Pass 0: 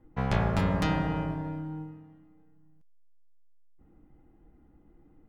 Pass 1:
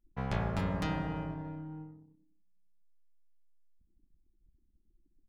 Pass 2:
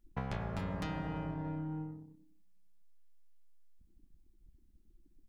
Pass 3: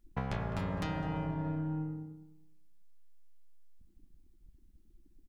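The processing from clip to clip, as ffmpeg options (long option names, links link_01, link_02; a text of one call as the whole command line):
ffmpeg -i in.wav -af "anlmdn=0.01,volume=-6.5dB" out.wav
ffmpeg -i in.wav -af "acompressor=threshold=-41dB:ratio=6,volume=6dB" out.wav
ffmpeg -i in.wav -filter_complex "[0:a]asplit=2[link_01][link_02];[link_02]adelay=206,lowpass=frequency=2100:poles=1,volume=-12.5dB,asplit=2[link_03][link_04];[link_04]adelay=206,lowpass=frequency=2100:poles=1,volume=0.23,asplit=2[link_05][link_06];[link_06]adelay=206,lowpass=frequency=2100:poles=1,volume=0.23[link_07];[link_01][link_03][link_05][link_07]amix=inputs=4:normalize=0,volume=2.5dB" out.wav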